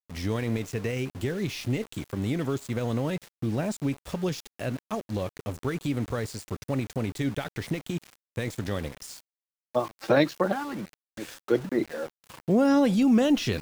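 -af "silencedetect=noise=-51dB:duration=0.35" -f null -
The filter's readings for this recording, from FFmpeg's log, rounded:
silence_start: 9.21
silence_end: 9.75 | silence_duration: 0.54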